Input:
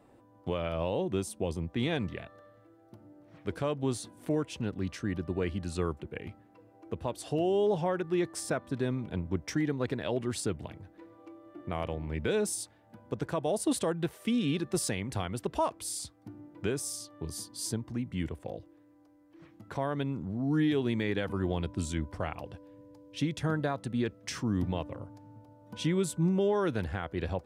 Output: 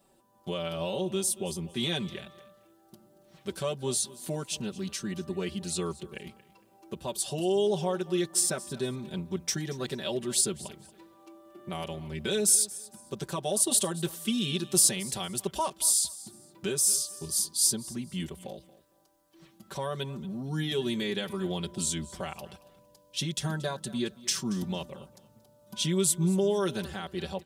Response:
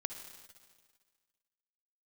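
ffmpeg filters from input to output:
-filter_complex "[0:a]dynaudnorm=f=230:g=3:m=1.68,aexciter=amount=4.3:drive=4.3:freq=3000,aecho=1:1:5.2:0.94,asplit=2[s0][s1];[s1]aecho=0:1:229|458:0.112|0.0269[s2];[s0][s2]amix=inputs=2:normalize=0,volume=0.376"

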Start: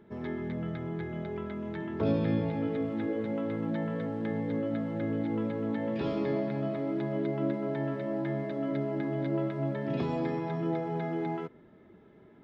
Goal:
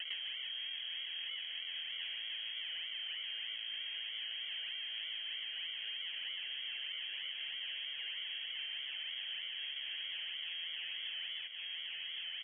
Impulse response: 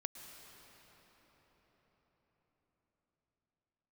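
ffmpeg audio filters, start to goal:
-filter_complex "[0:a]acrusher=samples=36:mix=1:aa=0.000001:lfo=1:lforange=36:lforate=3.2,asoftclip=type=tanh:threshold=0.02,asplit=2[s0][s1];[s1]aecho=0:1:1112:0.316[s2];[s0][s2]amix=inputs=2:normalize=0,lowpass=f=2900:t=q:w=0.5098,lowpass=f=2900:t=q:w=0.6013,lowpass=f=2900:t=q:w=0.9,lowpass=f=2900:t=q:w=2.563,afreqshift=-3400,highshelf=f=1500:t=q:w=3:g=6.5,acompressor=threshold=0.00282:ratio=10,volume=3.16"

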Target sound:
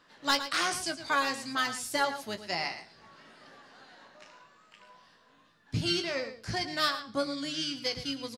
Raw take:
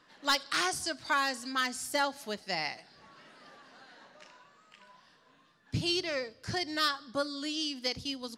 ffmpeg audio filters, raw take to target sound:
-filter_complex "[0:a]asplit=2[s0][s1];[s1]asetrate=22050,aresample=44100,atempo=2,volume=0.178[s2];[s0][s2]amix=inputs=2:normalize=0,asplit=2[s3][s4];[s4]adelay=18,volume=0.398[s5];[s3][s5]amix=inputs=2:normalize=0,asplit=2[s6][s7];[s7]adelay=110.8,volume=0.282,highshelf=f=4000:g=-2.49[s8];[s6][s8]amix=inputs=2:normalize=0"

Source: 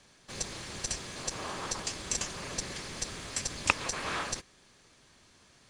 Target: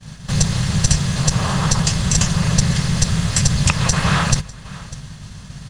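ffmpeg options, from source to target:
-filter_complex "[0:a]lowshelf=f=220:t=q:w=3:g=11,bandreject=f=2300:w=12,aecho=1:1:599:0.0708,asplit=2[s0][s1];[s1]acompressor=threshold=0.00501:ratio=6,volume=1.06[s2];[s0][s2]amix=inputs=2:normalize=0,aeval=exprs='val(0)+0.00282*(sin(2*PI*50*n/s)+sin(2*PI*2*50*n/s)/2+sin(2*PI*3*50*n/s)/3+sin(2*PI*4*50*n/s)/4+sin(2*PI*5*50*n/s)/5)':c=same,agate=range=0.0224:threshold=0.00708:ratio=3:detection=peak,alimiter=level_in=4.73:limit=0.891:release=50:level=0:latency=1"

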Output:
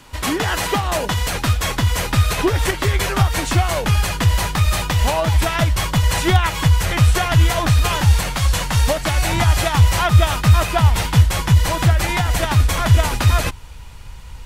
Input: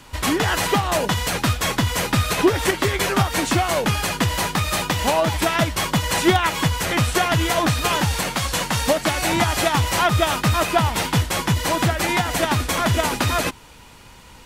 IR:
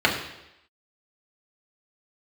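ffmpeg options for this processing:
-af "asubboost=boost=7.5:cutoff=89"

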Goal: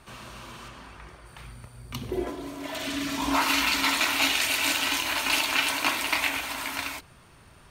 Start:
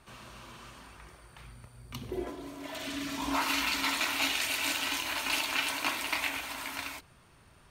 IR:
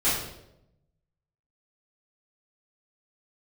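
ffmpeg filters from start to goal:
-filter_complex "[0:a]asettb=1/sr,asplit=3[s0][s1][s2];[s0]atrim=end=0.684[s3];[s1]atrim=start=0.68:end=1.26,asetpts=PTS-STARTPTS,afade=t=in:d=0.004:c=qsin,afade=t=out:st=0.576:d=0.004:c=qsin,highshelf=f=6900:g=-10.5[s4];[s2]atrim=start=1.256[s5];[s3][s4]acrossfade=d=0.004:c1=hsin:c2=qsin[s6];[s6][s5]acrossfade=d=0.004:c1=qsin:c2=hsin,volume=2"

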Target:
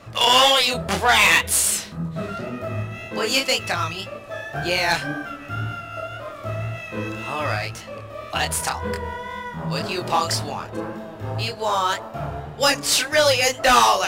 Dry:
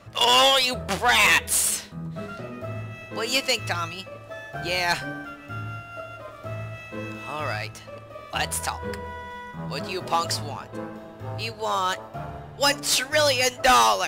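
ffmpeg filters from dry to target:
-filter_complex "[0:a]asplit=2[s0][s1];[s1]acompressor=threshold=0.0398:ratio=6,volume=0.708[s2];[s0][s2]amix=inputs=2:normalize=0,flanger=delay=22.5:depth=7.9:speed=1.9,volume=1.58"

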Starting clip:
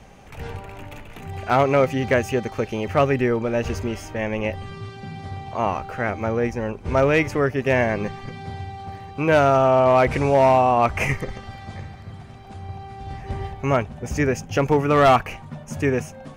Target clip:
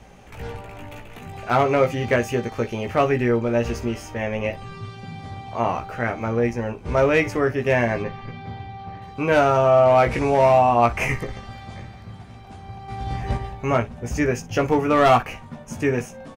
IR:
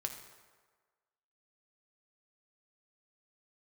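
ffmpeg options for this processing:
-filter_complex "[0:a]asettb=1/sr,asplit=3[s0][s1][s2];[s0]atrim=end=8.024[s3];[s1]atrim=start=8.02:end=9.02,asetpts=PTS-STARTPTS,afade=t=in:d=0.004:c=qsin,afade=t=out:st=0.996:d=0.004:c=qsin,lowpass=3500[s4];[s2]atrim=start=9.016[s5];[s3][s4]acrossfade=d=0.004:c1=hsin:c2=qsin[s6];[s6][s5]acrossfade=d=0.004:c1=qsin:c2=hsin,asettb=1/sr,asplit=3[s7][s8][s9];[s7]atrim=end=12.884[s10];[s8]atrim=start=12.88:end=13.37,asetpts=PTS-STARTPTS,afade=t=in:d=0.004:c=qsin,afade=t=out:st=0.486:d=0.004:c=qsin,acontrast=59[s11];[s9]atrim=start=13.366[s12];[s10][s11]acrossfade=d=0.004:c1=hsin:c2=qsin[s13];[s13][s12]acrossfade=d=0.004:c1=qsin:c2=hsin,aecho=1:1:17|60:0.562|0.133,volume=0.841"

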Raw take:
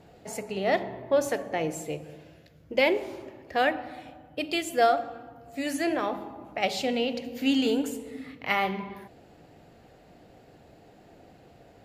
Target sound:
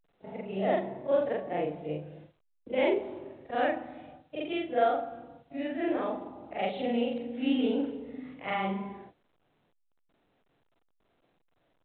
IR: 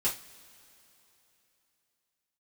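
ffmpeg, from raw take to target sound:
-filter_complex "[0:a]afftfilt=real='re':imag='-im':win_size=4096:overlap=0.75,acrossover=split=110|950[s0][s1][s2];[s1]acontrast=90[s3];[s0][s3][s2]amix=inputs=3:normalize=0,agate=range=0.00126:threshold=0.00501:ratio=16:detection=peak,volume=0.631" -ar 8000 -c:a pcm_alaw

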